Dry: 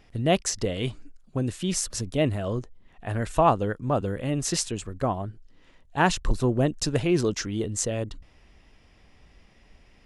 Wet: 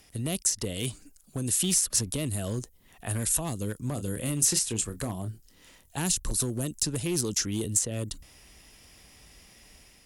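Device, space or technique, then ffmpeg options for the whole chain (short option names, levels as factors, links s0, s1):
FM broadcast chain: -filter_complex "[0:a]asettb=1/sr,asplit=3[s0][s1][s2];[s0]atrim=end=3.874[s3];[s1]atrim=start=3.87:end=5.99,asetpts=PTS-STARTPTS,afade=t=in:d=0.004:c=qsin,afade=t=out:st=2.116:d=0.004:c=qsin,asplit=2[s4][s5];[s5]adelay=27,volume=0.316[s6];[s4][s6]amix=inputs=2:normalize=0,atrim=end_sample=93492[s7];[s2]atrim=start=5.986[s8];[s3][s7]acrossfade=d=0.004:c1=hsin:c2=qsin[s9];[s9][s8]acrossfade=d=0.004:c1=qsin:c2=hsin,highpass=f=40:p=1,dynaudnorm=f=700:g=3:m=1.58,acrossover=split=340|3700[s10][s11][s12];[s10]acompressor=threshold=0.0708:ratio=4[s13];[s11]acompressor=threshold=0.0178:ratio=4[s14];[s12]acompressor=threshold=0.0126:ratio=4[s15];[s13][s14][s15]amix=inputs=3:normalize=0,aemphasis=mode=production:type=50fm,alimiter=limit=0.141:level=0:latency=1:release=165,asoftclip=type=hard:threshold=0.0944,lowpass=f=15000:w=0.5412,lowpass=f=15000:w=1.3066,aemphasis=mode=production:type=50fm,volume=0.75"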